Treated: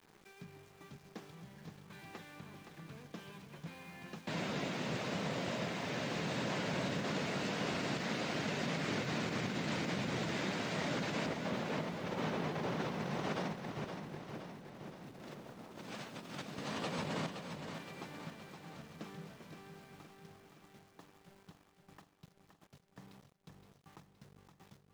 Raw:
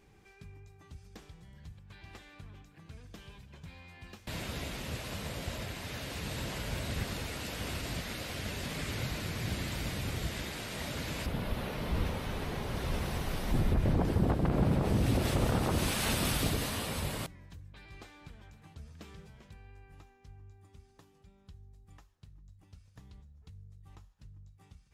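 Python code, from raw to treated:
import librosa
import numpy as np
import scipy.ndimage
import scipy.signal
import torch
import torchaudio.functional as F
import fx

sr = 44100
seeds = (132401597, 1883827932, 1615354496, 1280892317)

y = scipy.signal.sosfilt(scipy.signal.cheby1(3, 1.0, [160.0, 6700.0], 'bandpass', fs=sr, output='sos'), x)
y = fx.high_shelf(y, sr, hz=2300.0, db=-7.5)
y = fx.over_compress(y, sr, threshold_db=-41.0, ratio=-0.5)
y = np.where(np.abs(y) >= 10.0 ** (-58.5 / 20.0), y, 0.0)
y = fx.echo_feedback(y, sr, ms=519, feedback_pct=57, wet_db=-7.5)
y = y * librosa.db_to_amplitude(1.0)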